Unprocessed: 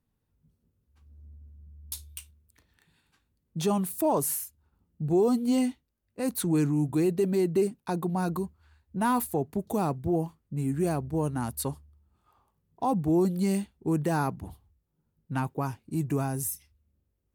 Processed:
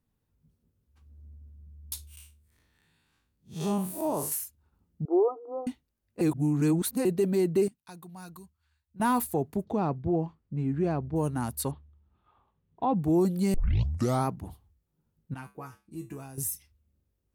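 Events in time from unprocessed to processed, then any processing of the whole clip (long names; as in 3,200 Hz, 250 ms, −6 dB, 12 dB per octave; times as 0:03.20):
0:02.07–0:04.32: spectrum smeared in time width 128 ms
0:05.05–0:05.67: linear-phase brick-wall band-pass 290–1,400 Hz
0:06.21–0:07.05: reverse
0:07.68–0:09.00: guitar amp tone stack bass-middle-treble 5-5-5
0:09.64–0:11.16: high-frequency loss of the air 210 metres
0:11.71–0:13.04: Butterworth low-pass 4,000 Hz 72 dB per octave
0:13.54: tape start 0.73 s
0:15.34–0:16.38: tuned comb filter 67 Hz, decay 0.26 s, harmonics odd, mix 90%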